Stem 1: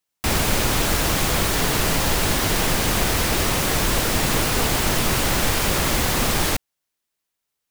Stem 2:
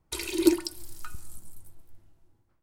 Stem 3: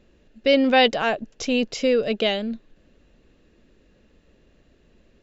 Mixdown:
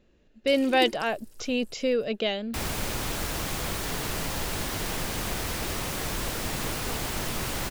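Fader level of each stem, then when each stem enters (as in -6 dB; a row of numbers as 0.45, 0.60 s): -10.5, -11.5, -5.5 dB; 2.30, 0.35, 0.00 s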